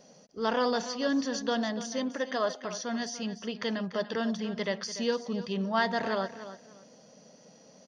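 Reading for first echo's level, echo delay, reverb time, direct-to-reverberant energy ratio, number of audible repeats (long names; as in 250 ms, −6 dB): −13.0 dB, 291 ms, no reverb audible, no reverb audible, 2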